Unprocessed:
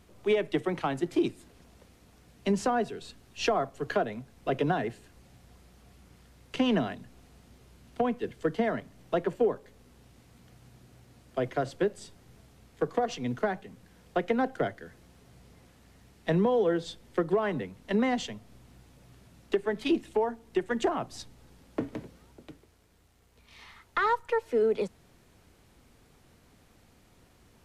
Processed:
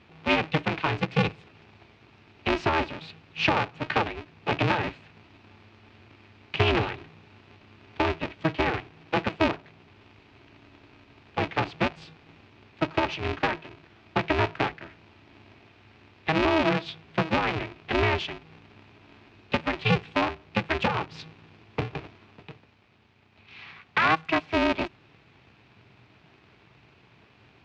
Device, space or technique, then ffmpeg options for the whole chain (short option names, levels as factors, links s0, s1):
ring modulator pedal into a guitar cabinet: -filter_complex "[0:a]asettb=1/sr,asplit=3[s0][s1][s2];[s0]atrim=end=24.054[s3];[s1]atrim=start=24.05:end=24.46,asetpts=PTS-STARTPTS,afade=t=in:d=0.004:c=qsin,afade=t=out:st=0.406:d=0.004:c=qsin,highshelf=f=4400:g=9.5[s4];[s2]atrim=start=24.456[s5];[s3][s4]acrossfade=d=0.004:c1=hsin:c2=qsin[s6];[s6][s5]acrossfade=d=0.004:c1=qsin:c2=hsin,aeval=exprs='val(0)*sgn(sin(2*PI*160*n/s))':c=same,highpass=84,equalizer=f=120:t=q:w=4:g=7,equalizer=f=240:t=q:w=4:g=-6,equalizer=f=540:t=q:w=4:g=-8,equalizer=f=2500:t=q:w=4:g=8,lowpass=f=4300:w=0.5412,lowpass=f=4300:w=1.3066,volume=1.58"